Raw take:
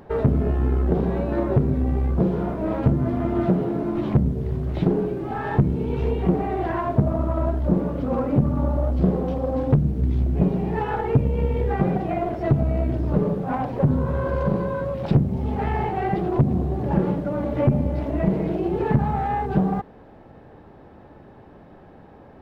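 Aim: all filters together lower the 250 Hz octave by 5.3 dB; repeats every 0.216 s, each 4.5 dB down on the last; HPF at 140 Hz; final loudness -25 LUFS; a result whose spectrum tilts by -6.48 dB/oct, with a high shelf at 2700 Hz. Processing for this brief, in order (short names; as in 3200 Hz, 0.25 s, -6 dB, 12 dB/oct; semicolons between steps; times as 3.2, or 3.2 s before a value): HPF 140 Hz; bell 250 Hz -6.5 dB; high shelf 2700 Hz -6.5 dB; feedback echo 0.216 s, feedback 60%, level -4.5 dB; gain +0.5 dB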